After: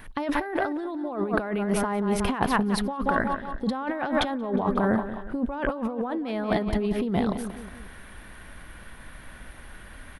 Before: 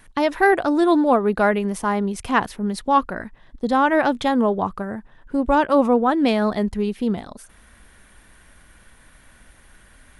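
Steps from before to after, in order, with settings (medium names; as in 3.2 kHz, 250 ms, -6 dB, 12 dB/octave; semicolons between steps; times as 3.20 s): peaking EQ 7.2 kHz -11 dB 1.1 oct; on a send: feedback delay 181 ms, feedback 43%, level -12.5 dB; on the sum: compressor with a negative ratio -27 dBFS, ratio -1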